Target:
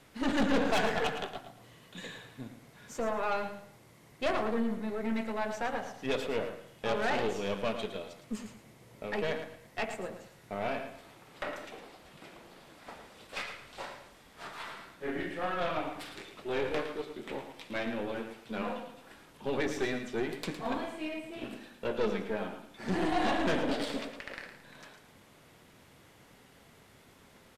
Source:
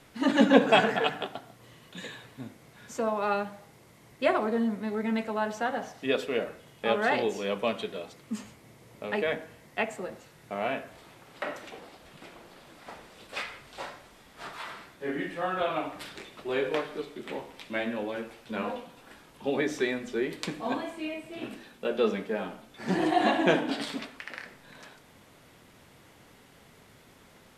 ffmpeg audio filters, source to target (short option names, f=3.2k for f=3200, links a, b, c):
-filter_complex "[0:a]asettb=1/sr,asplit=3[a][b][c];[a]atrim=end=23.634[d];[b]atrim=start=23.63:end=24.33,asetpts=PTS-STARTPTS,afade=t=in:d=0.004:c=qsin,afade=t=out:st=0.696:d=0.004:c=qsin,equalizer=f=520:w=2.4:g=12[e];[c]atrim=start=24.326[f];[d][e]acrossfade=d=0.004:c1=hsin:c2=qsin[g];[g][f]acrossfade=d=0.004:c1=qsin:c2=hsin,aeval=exprs='(tanh(17.8*val(0)+0.6)-tanh(0.6))/17.8':c=same,aecho=1:1:111|222|333:0.335|0.0904|0.0244"